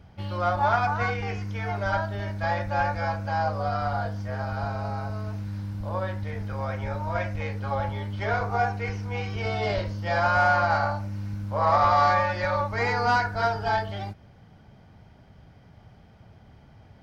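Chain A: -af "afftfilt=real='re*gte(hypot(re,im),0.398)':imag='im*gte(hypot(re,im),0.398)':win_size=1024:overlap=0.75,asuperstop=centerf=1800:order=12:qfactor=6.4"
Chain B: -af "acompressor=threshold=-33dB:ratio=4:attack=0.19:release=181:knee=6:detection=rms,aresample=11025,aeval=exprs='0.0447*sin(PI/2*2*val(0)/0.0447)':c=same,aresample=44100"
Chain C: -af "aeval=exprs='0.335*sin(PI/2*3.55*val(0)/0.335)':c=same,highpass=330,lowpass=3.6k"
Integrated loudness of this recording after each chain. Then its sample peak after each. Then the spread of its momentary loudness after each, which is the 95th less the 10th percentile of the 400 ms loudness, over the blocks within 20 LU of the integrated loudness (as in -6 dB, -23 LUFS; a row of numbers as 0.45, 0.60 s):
-29.0, -31.5, -17.0 LUFS; -12.0, -25.0, -5.0 dBFS; 20, 13, 11 LU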